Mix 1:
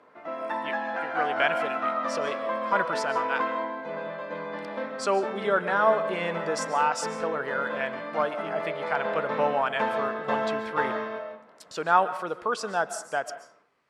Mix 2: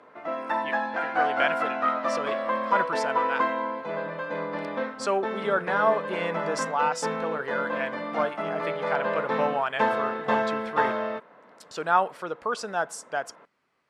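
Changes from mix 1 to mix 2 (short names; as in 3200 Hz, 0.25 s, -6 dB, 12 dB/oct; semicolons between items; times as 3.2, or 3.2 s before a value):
background +6.5 dB; reverb: off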